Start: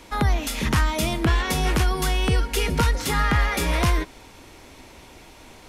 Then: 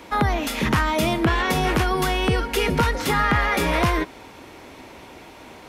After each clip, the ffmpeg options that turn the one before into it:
-filter_complex "[0:a]highpass=f=170:p=1,equalizer=f=8200:w=0.42:g=-9,asplit=2[s0][s1];[s1]alimiter=limit=0.119:level=0:latency=1,volume=1.06[s2];[s0][s2]amix=inputs=2:normalize=0"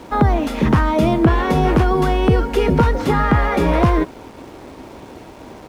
-af "acrusher=bits=6:mix=0:aa=0.000001,firequalizer=gain_entry='entry(310,0);entry(2000,-11);entry(13000,-19)':delay=0.05:min_phase=1,volume=2.37"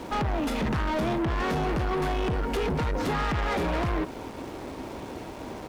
-af "acompressor=threshold=0.158:ratio=2.5,asoftclip=type=tanh:threshold=0.0596"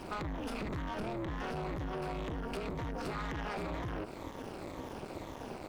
-af "afftfilt=real='re*pow(10,7/40*sin(2*PI*(1.1*log(max(b,1)*sr/1024/100)/log(2)-(-2)*(pts-256)/sr)))':imag='im*pow(10,7/40*sin(2*PI*(1.1*log(max(b,1)*sr/1024/100)/log(2)-(-2)*(pts-256)/sr)))':win_size=1024:overlap=0.75,acompressor=threshold=0.0316:ratio=12,tremolo=f=220:d=0.947,volume=0.794"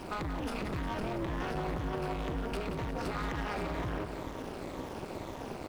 -filter_complex "[0:a]aecho=1:1:178|356|534|712|890|1068|1246:0.355|0.209|0.124|0.0729|0.043|0.0254|0.015,asplit=2[s0][s1];[s1]acrusher=bits=3:mode=log:mix=0:aa=0.000001,volume=0.251[s2];[s0][s2]amix=inputs=2:normalize=0"

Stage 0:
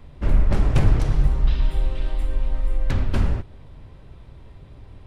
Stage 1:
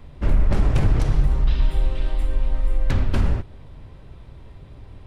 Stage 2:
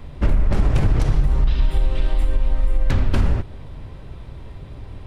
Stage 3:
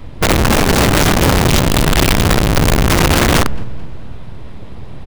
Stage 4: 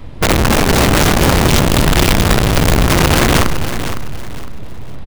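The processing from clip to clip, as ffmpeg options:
-af "alimiter=level_in=2.99:limit=0.891:release=50:level=0:latency=1,volume=0.398"
-af "acompressor=threshold=0.126:ratio=6,volume=2"
-af "aeval=exprs='abs(val(0))':c=same,aecho=1:1:218|436|654|872|1090:0.398|0.159|0.0637|0.0255|0.0102,aeval=exprs='(mod(4.73*val(0)+1,2)-1)/4.73':c=same,volume=2"
-af "aecho=1:1:509|1018|1527:0.316|0.0949|0.0285"

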